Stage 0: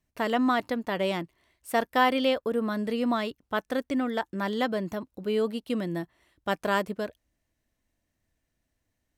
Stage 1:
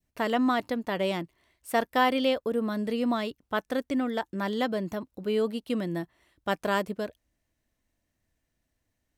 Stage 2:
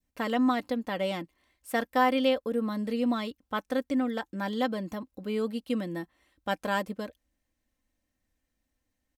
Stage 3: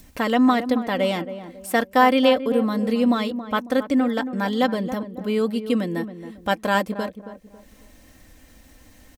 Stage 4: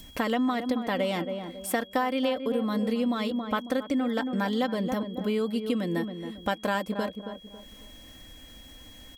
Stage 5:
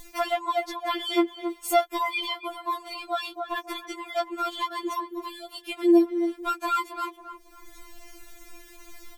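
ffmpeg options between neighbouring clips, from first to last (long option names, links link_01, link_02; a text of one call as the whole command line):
ffmpeg -i in.wav -af "adynamicequalizer=threshold=0.0112:dfrequency=1400:dqfactor=0.83:tfrequency=1400:tqfactor=0.83:attack=5:release=100:ratio=0.375:range=2:mode=cutabove:tftype=bell" out.wav
ffmpeg -i in.wav -af "aecho=1:1:3.8:0.51,volume=-3dB" out.wav
ffmpeg -i in.wav -filter_complex "[0:a]acompressor=mode=upward:threshold=-39dB:ratio=2.5,asplit=2[link_01][link_02];[link_02]adelay=274,lowpass=frequency=1100:poles=1,volume=-10.5dB,asplit=2[link_03][link_04];[link_04]adelay=274,lowpass=frequency=1100:poles=1,volume=0.37,asplit=2[link_05][link_06];[link_06]adelay=274,lowpass=frequency=1100:poles=1,volume=0.37,asplit=2[link_07][link_08];[link_08]adelay=274,lowpass=frequency=1100:poles=1,volume=0.37[link_09];[link_03][link_05][link_07][link_09]amix=inputs=4:normalize=0[link_10];[link_01][link_10]amix=inputs=2:normalize=0,volume=8dB" out.wav
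ffmpeg -i in.wav -af "acompressor=threshold=-24dB:ratio=6,aeval=exprs='val(0)+0.00316*sin(2*PI*3300*n/s)':channel_layout=same" out.wav
ffmpeg -i in.wav -af "afftfilt=real='re*4*eq(mod(b,16),0)':imag='im*4*eq(mod(b,16),0)':win_size=2048:overlap=0.75,volume=6.5dB" out.wav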